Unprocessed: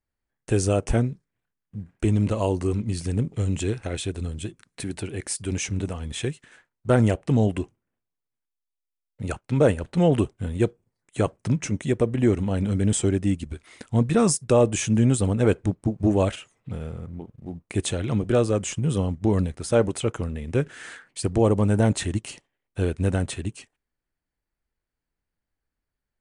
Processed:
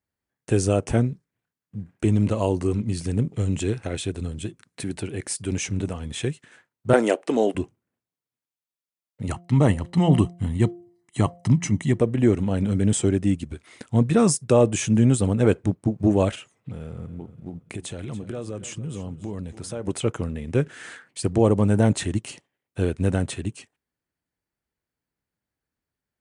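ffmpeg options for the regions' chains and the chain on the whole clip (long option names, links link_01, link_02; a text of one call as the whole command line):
ffmpeg -i in.wav -filter_complex "[0:a]asettb=1/sr,asplit=3[link_01][link_02][link_03];[link_01]atrim=end=6.934[link_04];[link_02]atrim=start=6.93:end=7.55,asetpts=PTS-STARTPTS,afade=type=in:duration=0.004:curve=qsin,afade=type=out:start_time=0.616:duration=0.004:curve=qsin,highpass=frequency=310:width=0.5412,highpass=frequency=310:width=1.3066,acontrast=21[link_05];[link_03]atrim=start=7.546[link_06];[link_04][link_05]acrossfade=duration=0.004:curve1=hsin:curve2=qsin[link_07];[link_07][link_06]acrossfade=duration=0.004:curve1=qsin:curve2=hsin,asettb=1/sr,asplit=3[link_08][link_09][link_10];[link_08]atrim=end=9.274[link_11];[link_09]atrim=start=9.27:end=11.99,asetpts=PTS-STARTPTS,afade=type=in:duration=0.004:curve=qsin,afade=type=out:start_time=2.716:duration=0.004:curve=qsin,aecho=1:1:1:0.64,atrim=end_sample=119952,bandreject=frequency=174.3:width_type=h:width=4,bandreject=frequency=348.6:width_type=h:width=4,bandreject=frequency=522.9:width_type=h:width=4,bandreject=frequency=697.2:width_type=h:width=4[link_12];[link_10]atrim=start=11.986[link_13];[link_11][link_12]acrossfade=duration=0.004:curve1=hsin:curve2=qsin[link_14];[link_14][link_13]acrossfade=duration=0.004:curve1=qsin:curve2=hsin,asettb=1/sr,asplit=3[link_15][link_16][link_17];[link_15]atrim=end=16.704[link_18];[link_16]atrim=start=16.7:end=19.87,asetpts=PTS-STARTPTS,afade=type=in:duration=0.004:curve=qsin,afade=type=out:start_time=3.166:duration=0.004:curve=qsin,acompressor=threshold=-32dB:ratio=4:attack=3.2:release=140:knee=1:detection=peak,aecho=1:1:283|566|849:0.178|0.064|0.023,atrim=end_sample=139797[link_19];[link_17]atrim=start=19.866[link_20];[link_18][link_19]acrossfade=duration=0.004:curve1=hsin:curve2=qsin[link_21];[link_21][link_20]acrossfade=duration=0.004:curve1=qsin:curve2=hsin,highpass=92,lowshelf=frequency=340:gain=3" out.wav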